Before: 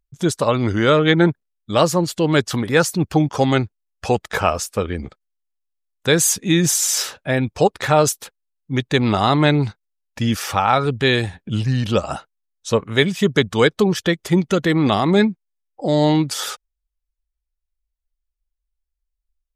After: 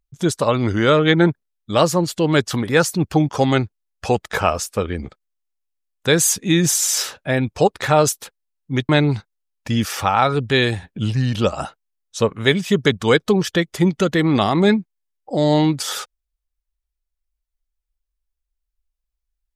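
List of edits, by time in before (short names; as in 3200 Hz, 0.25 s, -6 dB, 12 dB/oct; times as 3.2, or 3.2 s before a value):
8.89–9.4 cut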